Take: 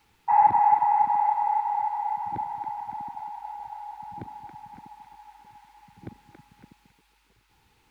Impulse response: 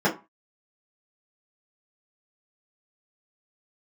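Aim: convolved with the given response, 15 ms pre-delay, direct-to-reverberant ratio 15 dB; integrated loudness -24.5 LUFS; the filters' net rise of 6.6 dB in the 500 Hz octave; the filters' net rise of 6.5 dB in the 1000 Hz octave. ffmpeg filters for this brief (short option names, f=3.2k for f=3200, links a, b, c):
-filter_complex "[0:a]equalizer=f=500:t=o:g=8,equalizer=f=1k:t=o:g=5,asplit=2[a][b];[1:a]atrim=start_sample=2205,adelay=15[c];[b][c]afir=irnorm=-1:irlink=0,volume=-31dB[d];[a][d]amix=inputs=2:normalize=0,volume=-7dB"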